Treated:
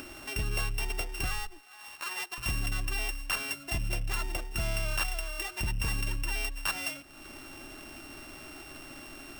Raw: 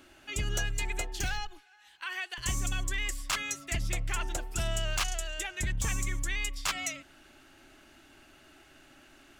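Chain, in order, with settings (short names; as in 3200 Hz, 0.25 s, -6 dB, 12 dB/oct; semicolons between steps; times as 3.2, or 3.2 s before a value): sample sorter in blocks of 16 samples; upward compressor, threshold -34 dBFS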